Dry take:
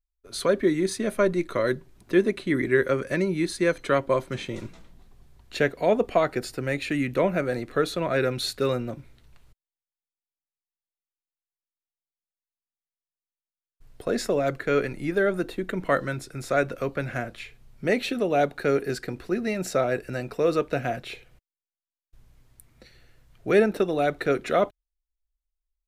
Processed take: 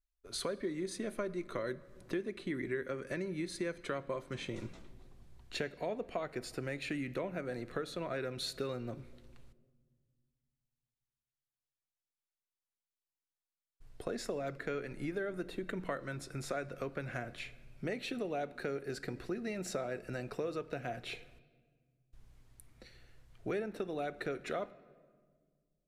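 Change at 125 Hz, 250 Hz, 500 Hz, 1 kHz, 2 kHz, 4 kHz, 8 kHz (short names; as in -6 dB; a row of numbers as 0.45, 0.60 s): -12.0, -13.0, -14.5, -14.5, -13.5, -9.5, -9.5 dB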